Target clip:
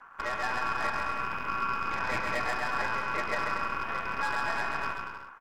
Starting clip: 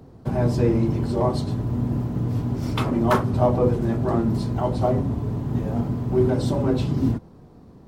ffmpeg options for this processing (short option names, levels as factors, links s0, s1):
-filter_complex "[0:a]acrossover=split=1800[s0][s1];[s1]acompressor=threshold=0.00126:ratio=4[s2];[s0][s2]amix=inputs=2:normalize=0,atempo=1.4,acrossover=split=450[s3][s4];[s3]aeval=exprs='val(0)*(1-0.5/2+0.5/2*cos(2*PI*1.1*n/s))':c=same[s5];[s4]aeval=exprs='val(0)*(1-0.5/2-0.5/2*cos(2*PI*1.1*n/s))':c=same[s6];[s5][s6]amix=inputs=2:normalize=0,acrossover=split=180|360|1600[s7][s8][s9][s10];[s7]acompressor=threshold=0.0282:ratio=4[s11];[s8]acompressor=threshold=0.01:ratio=4[s12];[s9]acompressor=threshold=0.0447:ratio=4[s13];[s10]acompressor=threshold=0.00141:ratio=4[s14];[s11][s12][s13][s14]amix=inputs=4:normalize=0,aeval=exprs='val(0)*sin(2*PI*1200*n/s)':c=same,aeval=exprs='0.168*(cos(1*acos(clip(val(0)/0.168,-1,1)))-cos(1*PI/2))+0.015*(cos(8*acos(clip(val(0)/0.168,-1,1)))-cos(8*PI/2))':c=same,asoftclip=type=hard:threshold=0.075,aecho=1:1:140|245|323.8|382.8|427.1:0.631|0.398|0.251|0.158|0.1,asetrate=45938,aresample=44100,volume=0.841"